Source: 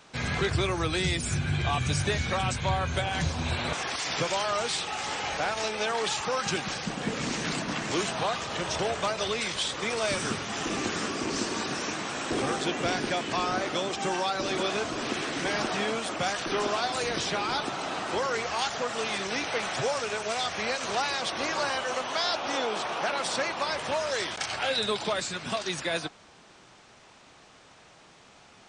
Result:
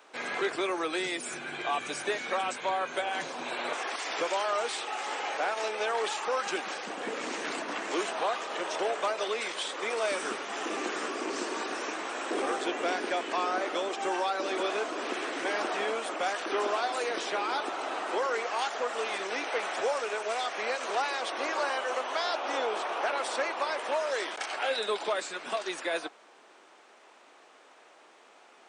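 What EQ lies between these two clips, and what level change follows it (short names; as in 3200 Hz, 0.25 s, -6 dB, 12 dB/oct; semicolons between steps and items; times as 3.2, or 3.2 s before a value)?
HPF 320 Hz 24 dB/oct; bell 5200 Hz -8 dB 1.6 oct; 0.0 dB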